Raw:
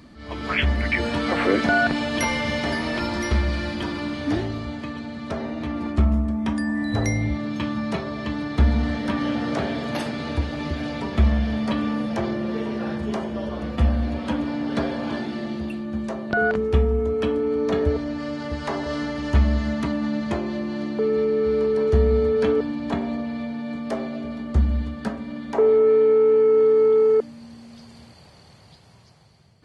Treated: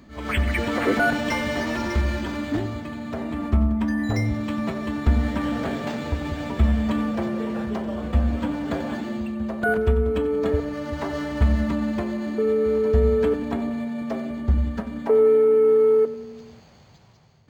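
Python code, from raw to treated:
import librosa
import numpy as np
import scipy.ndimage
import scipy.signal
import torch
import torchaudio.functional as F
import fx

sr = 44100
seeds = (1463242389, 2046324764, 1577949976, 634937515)

y = fx.stretch_vocoder(x, sr, factor=0.59)
y = fx.echo_feedback(y, sr, ms=91, feedback_pct=59, wet_db=-15)
y = np.interp(np.arange(len(y)), np.arange(len(y))[::4], y[::4])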